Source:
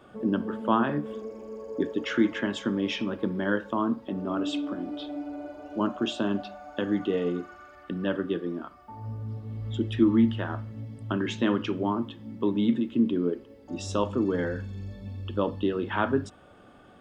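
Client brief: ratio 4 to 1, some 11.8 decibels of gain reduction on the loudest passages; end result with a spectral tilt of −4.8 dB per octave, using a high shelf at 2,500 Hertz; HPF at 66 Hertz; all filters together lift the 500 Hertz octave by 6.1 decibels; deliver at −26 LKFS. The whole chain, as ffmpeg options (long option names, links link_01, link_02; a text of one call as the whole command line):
ffmpeg -i in.wav -af "highpass=66,equalizer=frequency=500:width_type=o:gain=7.5,highshelf=frequency=2500:gain=8,acompressor=threshold=-29dB:ratio=4,volume=7.5dB" out.wav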